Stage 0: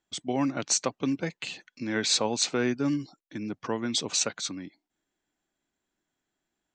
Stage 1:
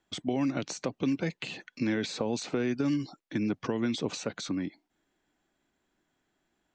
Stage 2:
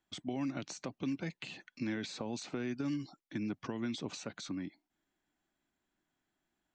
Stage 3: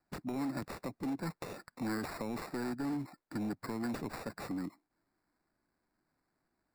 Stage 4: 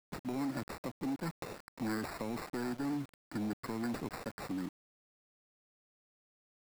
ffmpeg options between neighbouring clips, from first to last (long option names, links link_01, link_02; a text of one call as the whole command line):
ffmpeg -i in.wav -filter_complex "[0:a]alimiter=limit=-21.5dB:level=0:latency=1:release=69,lowpass=frequency=3500:poles=1,acrossover=split=570|2200[link_01][link_02][link_03];[link_01]acompressor=threshold=-34dB:ratio=4[link_04];[link_02]acompressor=threshold=-51dB:ratio=4[link_05];[link_03]acompressor=threshold=-47dB:ratio=4[link_06];[link_04][link_05][link_06]amix=inputs=3:normalize=0,volume=7.5dB" out.wav
ffmpeg -i in.wav -af "equalizer=frequency=470:width_type=o:width=0.47:gain=-6,volume=-7dB" out.wav
ffmpeg -i in.wav -filter_complex "[0:a]acrossover=split=760[link_01][link_02];[link_01]volume=35.5dB,asoftclip=hard,volume=-35.5dB[link_03];[link_02]acrusher=samples=14:mix=1:aa=0.000001[link_04];[link_03][link_04]amix=inputs=2:normalize=0,volume=2.5dB" out.wav
ffmpeg -i in.wav -af "aeval=exprs='val(0)*gte(abs(val(0)),0.00501)':channel_layout=same" out.wav